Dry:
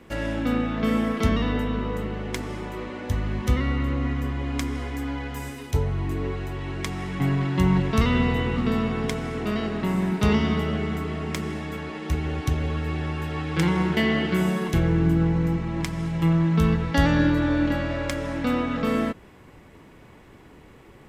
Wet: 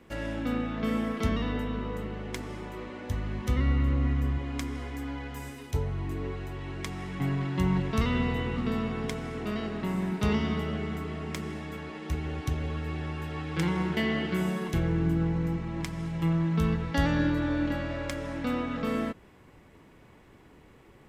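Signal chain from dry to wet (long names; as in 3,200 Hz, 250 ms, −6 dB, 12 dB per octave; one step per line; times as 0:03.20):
0:03.56–0:04.38: low-shelf EQ 150 Hz +9 dB
level −6 dB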